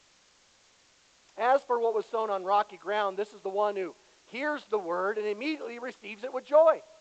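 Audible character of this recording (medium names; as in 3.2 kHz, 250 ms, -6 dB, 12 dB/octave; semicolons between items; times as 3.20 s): a quantiser's noise floor 10-bit, dither triangular; G.722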